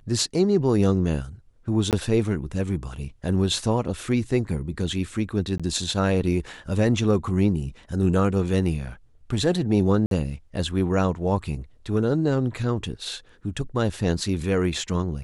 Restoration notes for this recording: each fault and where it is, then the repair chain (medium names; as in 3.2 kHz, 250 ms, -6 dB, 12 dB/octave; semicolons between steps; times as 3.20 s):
1.91–1.93 s: dropout 18 ms
5.58–5.60 s: dropout 16 ms
10.06–10.11 s: dropout 52 ms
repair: interpolate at 1.91 s, 18 ms; interpolate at 5.58 s, 16 ms; interpolate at 10.06 s, 52 ms